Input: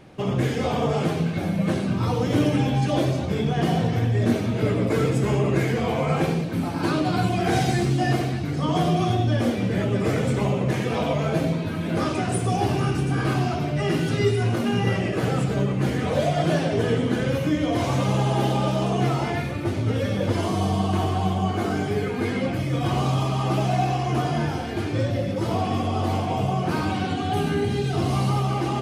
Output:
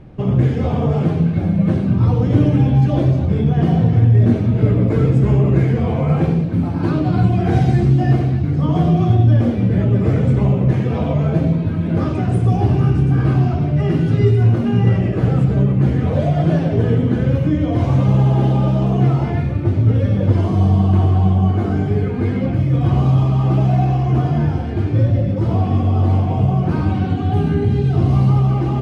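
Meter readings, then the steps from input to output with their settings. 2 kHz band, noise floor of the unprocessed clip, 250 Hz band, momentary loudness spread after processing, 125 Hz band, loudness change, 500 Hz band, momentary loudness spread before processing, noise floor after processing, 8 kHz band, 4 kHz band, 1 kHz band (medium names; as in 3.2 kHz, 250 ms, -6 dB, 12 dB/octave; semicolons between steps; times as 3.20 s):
-3.5 dB, -27 dBFS, +6.5 dB, 4 LU, +10.5 dB, +7.5 dB, +2.0 dB, 3 LU, -21 dBFS, under -10 dB, no reading, -0.5 dB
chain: RIAA curve playback; trim -1 dB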